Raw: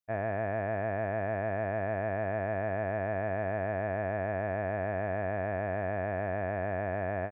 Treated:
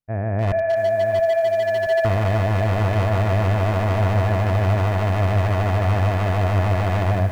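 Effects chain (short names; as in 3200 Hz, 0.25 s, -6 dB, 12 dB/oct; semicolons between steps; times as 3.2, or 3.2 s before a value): 0.52–2.05 sine-wave speech; tilt -1.5 dB/oct; thin delay 0.302 s, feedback 84%, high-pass 1700 Hz, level -8 dB; AGC gain up to 11 dB; limiter -14.5 dBFS, peak gain reduction 5 dB; low shelf 210 Hz +11 dB; Schroeder reverb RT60 0.84 s, combs from 29 ms, DRR 13.5 dB; wavefolder -14.5 dBFS; lo-fi delay 0.673 s, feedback 55%, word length 7-bit, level -10.5 dB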